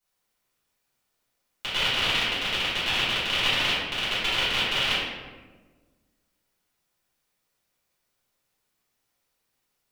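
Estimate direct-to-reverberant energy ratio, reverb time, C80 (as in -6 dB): -14.0 dB, 1.4 s, 1.0 dB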